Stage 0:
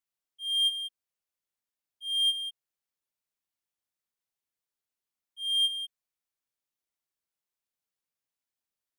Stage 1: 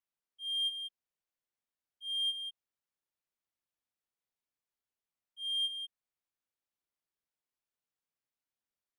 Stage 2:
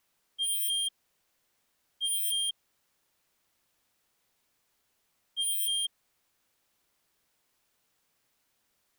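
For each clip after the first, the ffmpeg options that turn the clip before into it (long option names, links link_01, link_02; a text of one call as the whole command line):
ffmpeg -i in.wav -filter_complex "[0:a]highshelf=frequency=4400:gain=-8.5,asplit=2[link_01][link_02];[link_02]alimiter=level_in=7.5dB:limit=-24dB:level=0:latency=1:release=203,volume=-7.5dB,volume=-1.5dB[link_03];[link_01][link_03]amix=inputs=2:normalize=0,volume=-7dB" out.wav
ffmpeg -i in.wav -af "aeval=exprs='0.0447*sin(PI/2*5.62*val(0)/0.0447)':channel_layout=same" out.wav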